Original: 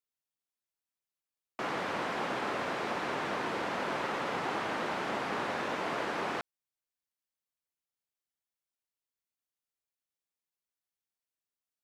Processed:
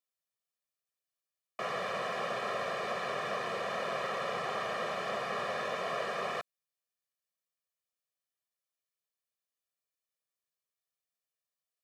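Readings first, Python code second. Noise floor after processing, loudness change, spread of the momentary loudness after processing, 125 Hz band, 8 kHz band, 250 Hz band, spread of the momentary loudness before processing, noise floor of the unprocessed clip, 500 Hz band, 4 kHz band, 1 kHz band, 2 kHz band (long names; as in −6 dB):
below −85 dBFS, −1.0 dB, 3 LU, −3.5 dB, −1.0 dB, −9.0 dB, 3 LU, below −85 dBFS, +0.5 dB, −0.5 dB, −1.5 dB, −1.5 dB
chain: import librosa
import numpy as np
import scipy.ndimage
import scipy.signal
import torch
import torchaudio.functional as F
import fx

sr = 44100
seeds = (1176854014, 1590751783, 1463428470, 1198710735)

y = scipy.signal.sosfilt(scipy.signal.butter(2, 130.0, 'highpass', fs=sr, output='sos'), x)
y = y + 0.94 * np.pad(y, (int(1.7 * sr / 1000.0), 0))[:len(y)]
y = y * librosa.db_to_amplitude(-3.5)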